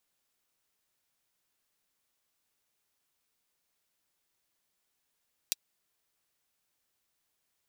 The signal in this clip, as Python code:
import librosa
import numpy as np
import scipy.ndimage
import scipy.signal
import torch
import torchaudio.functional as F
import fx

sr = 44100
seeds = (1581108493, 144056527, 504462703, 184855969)

y = fx.drum_hat(sr, length_s=0.24, from_hz=3700.0, decay_s=0.03)